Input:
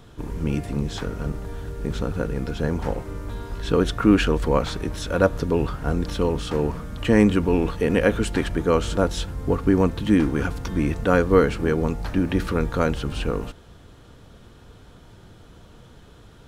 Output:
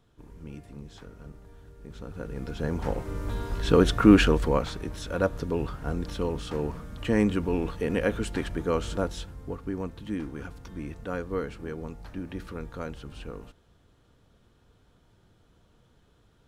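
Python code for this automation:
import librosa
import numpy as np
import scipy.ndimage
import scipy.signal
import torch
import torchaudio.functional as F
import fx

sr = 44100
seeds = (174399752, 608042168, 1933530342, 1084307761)

y = fx.gain(x, sr, db=fx.line((1.87, -17.5), (2.41, -8.0), (3.29, 0.5), (4.21, 0.5), (4.74, -7.0), (8.97, -7.0), (9.59, -14.5)))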